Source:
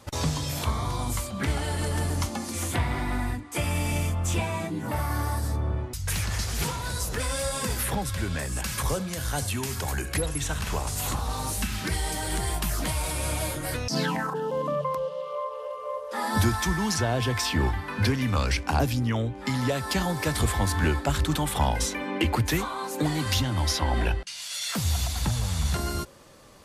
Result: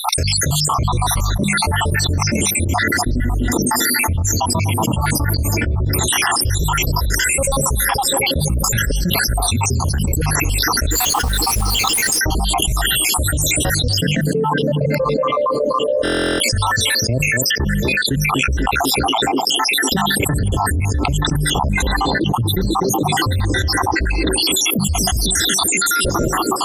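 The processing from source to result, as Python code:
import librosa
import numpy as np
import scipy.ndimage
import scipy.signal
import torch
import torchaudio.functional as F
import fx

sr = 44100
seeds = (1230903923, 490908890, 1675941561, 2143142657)

y = fx.spec_dropout(x, sr, seeds[0], share_pct=80)
y = fx.mod_noise(y, sr, seeds[1], snr_db=14, at=(10.91, 12.19))
y = fx.low_shelf(y, sr, hz=380.0, db=8.5)
y = fx.hum_notches(y, sr, base_hz=50, count=4)
y = fx.echo_banded(y, sr, ms=246, feedback_pct=84, hz=370.0, wet_db=-19)
y = fx.rider(y, sr, range_db=4, speed_s=2.0)
y = fx.high_shelf(y, sr, hz=8300.0, db=-9.0, at=(14.76, 15.76))
y = fx.buffer_glitch(y, sr, at_s=(16.03,), block=1024, repeats=15)
y = fx.env_flatten(y, sr, amount_pct=100)
y = F.gain(torch.from_numpy(y), -3.0).numpy()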